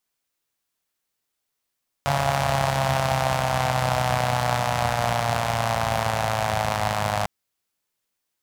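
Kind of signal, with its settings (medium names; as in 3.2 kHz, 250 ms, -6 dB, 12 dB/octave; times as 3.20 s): four-cylinder engine model, changing speed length 5.20 s, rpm 4200, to 3100, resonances 89/130/700 Hz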